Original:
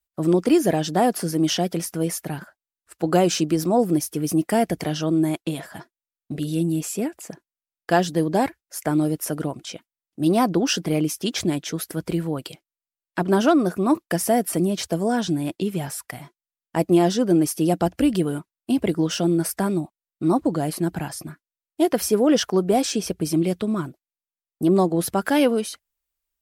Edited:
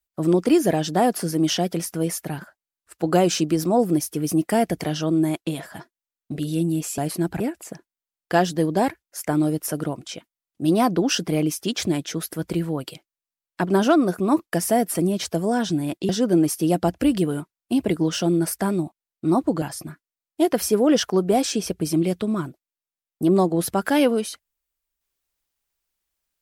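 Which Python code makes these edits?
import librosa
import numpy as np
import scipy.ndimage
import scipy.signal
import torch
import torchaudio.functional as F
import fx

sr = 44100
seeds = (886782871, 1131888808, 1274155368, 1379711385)

y = fx.edit(x, sr, fx.cut(start_s=15.67, length_s=1.4),
    fx.move(start_s=20.6, length_s=0.42, to_s=6.98), tone=tone)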